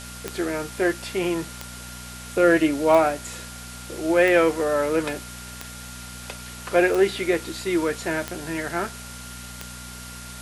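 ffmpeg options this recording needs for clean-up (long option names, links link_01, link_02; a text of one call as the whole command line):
ffmpeg -i in.wav -af "adeclick=threshold=4,bandreject=frequency=60.9:width_type=h:width=4,bandreject=frequency=121.8:width_type=h:width=4,bandreject=frequency=182.7:width_type=h:width=4,bandreject=frequency=243.6:width_type=h:width=4,bandreject=frequency=1400:width=30,afwtdn=0.011" out.wav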